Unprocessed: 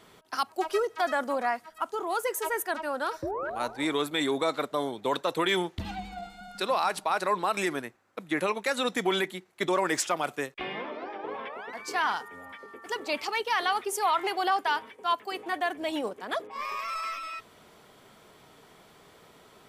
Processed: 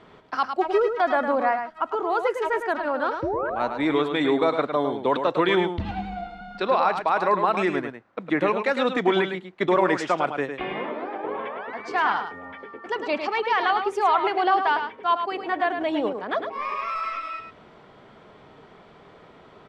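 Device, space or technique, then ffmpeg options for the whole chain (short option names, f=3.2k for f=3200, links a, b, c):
phone in a pocket: -filter_complex "[0:a]asettb=1/sr,asplit=3[a][b][c];[a]atrim=end=6.224[d];[b]atrim=start=6.22:end=6.97,asetpts=PTS-STARTPTS,afade=t=in:d=0.004:c=qsin,afade=t=out:st=0.746:d=0.004:c=qsin,lowpass=6.5k[e];[c]atrim=start=6.966[f];[d][e]acrossfade=d=0.004:c1=hsin:c2=qsin[g];[g][f]acrossfade=d=0.004:c1=qsin:c2=hsin,lowpass=3.8k,highshelf=f=2.5k:g=-8.5,aecho=1:1:106:0.422,volume=6.5dB"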